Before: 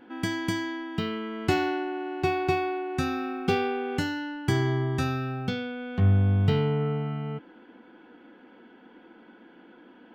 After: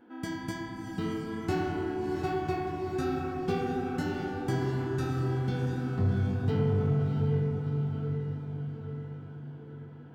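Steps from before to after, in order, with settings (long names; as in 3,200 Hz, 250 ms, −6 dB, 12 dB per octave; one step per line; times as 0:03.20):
parametric band 2,700 Hz −7 dB 1.1 octaves
feedback delay with all-pass diffusion 683 ms, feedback 52%, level −6 dB
flanger 1.2 Hz, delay 8.2 ms, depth 8.9 ms, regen −34%
on a send at −6 dB: tilt shelving filter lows +7.5 dB, about 630 Hz + convolution reverb RT60 3.7 s, pre-delay 53 ms
on the sum: soft clipping −15 dBFS, distortion −24 dB
level −2 dB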